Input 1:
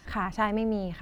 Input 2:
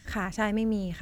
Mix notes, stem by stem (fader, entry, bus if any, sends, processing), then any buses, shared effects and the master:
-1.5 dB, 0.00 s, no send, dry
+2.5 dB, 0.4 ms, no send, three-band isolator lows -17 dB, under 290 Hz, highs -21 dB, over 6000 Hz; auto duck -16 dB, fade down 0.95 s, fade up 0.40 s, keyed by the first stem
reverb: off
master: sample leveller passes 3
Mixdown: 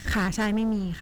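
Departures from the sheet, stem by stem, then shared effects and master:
stem 1 -1.5 dB -> -13.0 dB; stem 2: missing three-band isolator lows -17 dB, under 290 Hz, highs -21 dB, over 6000 Hz

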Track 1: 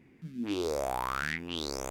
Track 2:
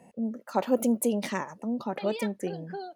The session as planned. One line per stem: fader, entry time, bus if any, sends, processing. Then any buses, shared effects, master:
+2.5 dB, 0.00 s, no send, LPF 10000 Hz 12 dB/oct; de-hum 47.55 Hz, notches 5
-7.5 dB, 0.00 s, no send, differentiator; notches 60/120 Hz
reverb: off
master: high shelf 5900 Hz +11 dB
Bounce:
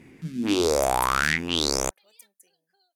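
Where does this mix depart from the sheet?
stem 1 +2.5 dB -> +9.5 dB; stem 2 -7.5 dB -> -14.0 dB

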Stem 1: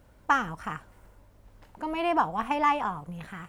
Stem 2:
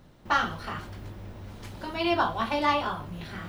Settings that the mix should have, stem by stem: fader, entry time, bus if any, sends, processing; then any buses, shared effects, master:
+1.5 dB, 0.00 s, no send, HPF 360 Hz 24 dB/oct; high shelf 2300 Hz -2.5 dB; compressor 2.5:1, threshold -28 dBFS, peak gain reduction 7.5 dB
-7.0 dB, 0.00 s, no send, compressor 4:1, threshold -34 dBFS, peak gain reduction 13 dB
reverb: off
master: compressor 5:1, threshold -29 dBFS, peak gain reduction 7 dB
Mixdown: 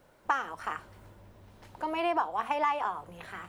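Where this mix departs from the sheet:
stem 2 -7.0 dB -> -13.0 dB; master: missing compressor 5:1, threshold -29 dBFS, peak gain reduction 7 dB

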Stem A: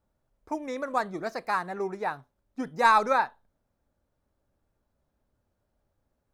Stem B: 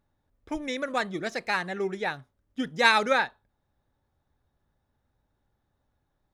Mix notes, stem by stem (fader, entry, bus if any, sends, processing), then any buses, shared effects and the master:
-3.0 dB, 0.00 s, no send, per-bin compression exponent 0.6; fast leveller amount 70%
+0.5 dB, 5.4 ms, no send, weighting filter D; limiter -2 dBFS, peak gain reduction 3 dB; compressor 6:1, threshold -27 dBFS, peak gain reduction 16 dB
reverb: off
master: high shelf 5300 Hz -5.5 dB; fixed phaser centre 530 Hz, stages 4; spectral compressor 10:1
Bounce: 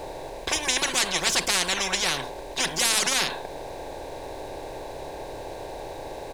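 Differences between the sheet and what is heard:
stem A: missing fast leveller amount 70%; stem B: missing compressor 6:1, threshold -27 dBFS, peak gain reduction 16 dB

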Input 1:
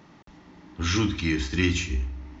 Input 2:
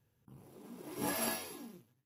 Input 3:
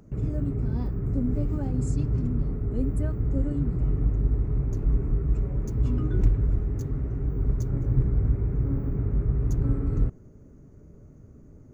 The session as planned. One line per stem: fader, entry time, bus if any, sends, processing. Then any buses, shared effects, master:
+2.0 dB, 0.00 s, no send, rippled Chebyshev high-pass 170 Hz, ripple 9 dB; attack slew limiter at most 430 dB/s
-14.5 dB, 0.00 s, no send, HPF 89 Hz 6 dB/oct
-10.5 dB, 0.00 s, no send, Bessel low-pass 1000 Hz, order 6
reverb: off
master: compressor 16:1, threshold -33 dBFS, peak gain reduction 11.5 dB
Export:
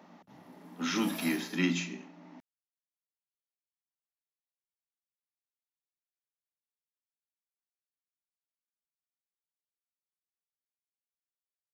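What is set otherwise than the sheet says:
stem 2 -14.5 dB -> -6.0 dB; stem 3: muted; master: missing compressor 16:1, threshold -33 dBFS, peak gain reduction 11.5 dB

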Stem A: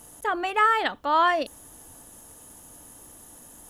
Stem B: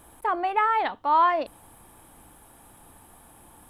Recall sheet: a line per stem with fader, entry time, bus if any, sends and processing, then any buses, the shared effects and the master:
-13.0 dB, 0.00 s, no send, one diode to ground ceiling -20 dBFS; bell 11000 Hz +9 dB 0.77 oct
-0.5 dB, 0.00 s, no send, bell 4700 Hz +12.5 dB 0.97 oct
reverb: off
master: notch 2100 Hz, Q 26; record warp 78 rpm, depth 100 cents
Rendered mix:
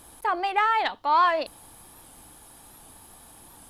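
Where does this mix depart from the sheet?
stem B: polarity flipped; master: missing notch 2100 Hz, Q 26

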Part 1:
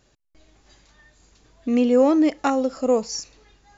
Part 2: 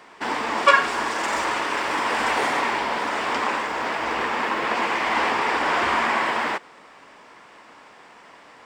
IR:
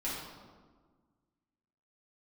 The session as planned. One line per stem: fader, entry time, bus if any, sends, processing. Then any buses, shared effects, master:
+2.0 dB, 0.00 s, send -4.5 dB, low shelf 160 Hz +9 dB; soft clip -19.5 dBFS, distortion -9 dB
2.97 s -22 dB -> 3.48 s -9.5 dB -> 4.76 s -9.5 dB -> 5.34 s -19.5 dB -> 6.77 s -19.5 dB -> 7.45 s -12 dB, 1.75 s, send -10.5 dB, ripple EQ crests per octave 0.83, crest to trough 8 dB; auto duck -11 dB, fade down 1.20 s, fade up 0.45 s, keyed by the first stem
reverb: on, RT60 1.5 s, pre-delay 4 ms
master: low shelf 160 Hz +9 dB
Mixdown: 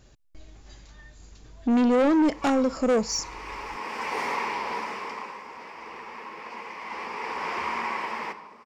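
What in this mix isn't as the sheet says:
stem 1: send off; master: missing low shelf 160 Hz +9 dB

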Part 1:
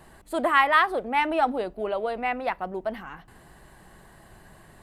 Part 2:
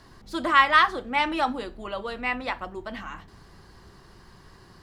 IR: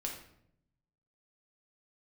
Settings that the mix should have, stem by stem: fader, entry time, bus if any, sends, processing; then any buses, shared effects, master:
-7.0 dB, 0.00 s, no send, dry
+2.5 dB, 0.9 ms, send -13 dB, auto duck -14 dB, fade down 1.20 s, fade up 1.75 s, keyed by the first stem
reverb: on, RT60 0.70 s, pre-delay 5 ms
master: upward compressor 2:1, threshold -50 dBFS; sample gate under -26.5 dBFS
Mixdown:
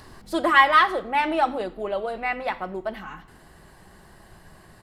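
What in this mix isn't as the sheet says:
stem 1 -7.0 dB -> 0.0 dB; master: missing sample gate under -26.5 dBFS

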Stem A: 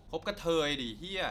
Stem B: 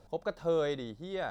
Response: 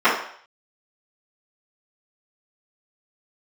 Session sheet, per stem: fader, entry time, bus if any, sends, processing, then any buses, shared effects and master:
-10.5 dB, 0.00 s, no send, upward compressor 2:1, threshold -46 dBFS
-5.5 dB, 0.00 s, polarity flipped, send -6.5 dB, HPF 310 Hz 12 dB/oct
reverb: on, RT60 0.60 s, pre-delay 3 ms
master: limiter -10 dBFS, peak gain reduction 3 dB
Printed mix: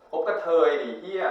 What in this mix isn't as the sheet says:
stem A -10.5 dB -> -21.0 dB; master: missing limiter -10 dBFS, peak gain reduction 3 dB

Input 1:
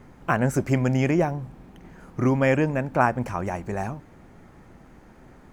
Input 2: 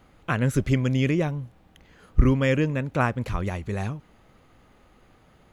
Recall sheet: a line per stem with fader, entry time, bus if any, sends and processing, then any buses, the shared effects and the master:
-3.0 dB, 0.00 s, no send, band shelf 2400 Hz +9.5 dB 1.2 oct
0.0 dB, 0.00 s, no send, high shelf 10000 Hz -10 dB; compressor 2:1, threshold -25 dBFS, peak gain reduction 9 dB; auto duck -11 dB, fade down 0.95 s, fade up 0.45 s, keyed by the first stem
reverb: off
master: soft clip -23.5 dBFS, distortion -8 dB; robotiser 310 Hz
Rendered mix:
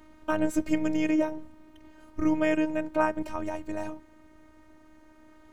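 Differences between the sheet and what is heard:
stem 1: missing band shelf 2400 Hz +9.5 dB 1.2 oct; master: missing soft clip -23.5 dBFS, distortion -8 dB

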